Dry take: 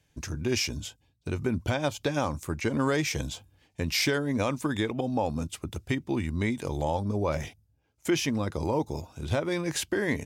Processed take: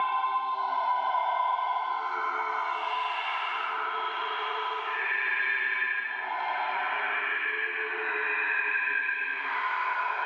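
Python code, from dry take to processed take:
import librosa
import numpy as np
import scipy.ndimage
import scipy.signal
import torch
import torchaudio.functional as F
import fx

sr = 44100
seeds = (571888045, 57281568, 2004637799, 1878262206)

y = fx.band_invert(x, sr, width_hz=500)
y = scipy.signal.sosfilt(scipy.signal.butter(4, 840.0, 'highpass', fs=sr, output='sos'), y)
y = fx.paulstretch(y, sr, seeds[0], factor=6.0, window_s=0.25, from_s=5.0)
y = scipy.signal.sosfilt(scipy.signal.butter(4, 2800.0, 'lowpass', fs=sr, output='sos'), y)
y = fx.peak_eq(y, sr, hz=1500.0, db=6.5, octaves=1.1)
y = fx.echo_diffused(y, sr, ms=1505, feedback_pct=42, wet_db=-15)
y = fx.band_squash(y, sr, depth_pct=100)
y = y * librosa.db_to_amplitude(6.0)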